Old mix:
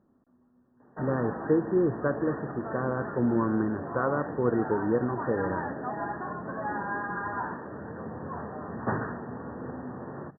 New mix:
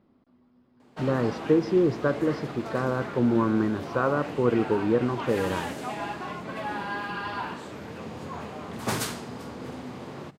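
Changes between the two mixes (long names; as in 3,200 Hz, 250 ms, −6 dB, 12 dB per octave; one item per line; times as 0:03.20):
speech +3.0 dB
master: remove linear-phase brick-wall low-pass 1,900 Hz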